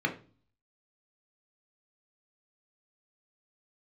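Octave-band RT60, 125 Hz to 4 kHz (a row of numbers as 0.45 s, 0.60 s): 0.70 s, 0.60 s, 0.40 s, 0.35 s, 0.30 s, 0.35 s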